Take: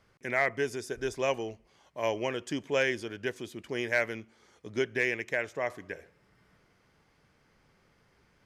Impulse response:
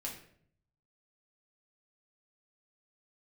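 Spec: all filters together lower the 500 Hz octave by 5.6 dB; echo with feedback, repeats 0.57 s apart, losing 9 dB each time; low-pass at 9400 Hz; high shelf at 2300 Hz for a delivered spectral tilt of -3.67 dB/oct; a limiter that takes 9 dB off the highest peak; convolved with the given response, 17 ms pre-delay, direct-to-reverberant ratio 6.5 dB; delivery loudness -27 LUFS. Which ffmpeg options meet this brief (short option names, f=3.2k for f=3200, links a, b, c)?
-filter_complex "[0:a]lowpass=9.4k,equalizer=f=500:t=o:g=-7.5,highshelf=f=2.3k:g=4,alimiter=limit=-22.5dB:level=0:latency=1,aecho=1:1:570|1140|1710|2280:0.355|0.124|0.0435|0.0152,asplit=2[a][b];[1:a]atrim=start_sample=2205,adelay=17[c];[b][c]afir=irnorm=-1:irlink=0,volume=-6dB[d];[a][d]amix=inputs=2:normalize=0,volume=9dB"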